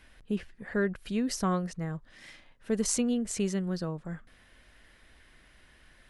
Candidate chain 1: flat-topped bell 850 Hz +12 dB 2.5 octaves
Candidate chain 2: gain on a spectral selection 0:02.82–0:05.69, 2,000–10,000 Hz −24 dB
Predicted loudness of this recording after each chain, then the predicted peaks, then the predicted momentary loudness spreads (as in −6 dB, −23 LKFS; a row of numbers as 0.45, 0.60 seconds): −26.0, −32.5 LKFS; −8.5, −17.0 dBFS; 16, 15 LU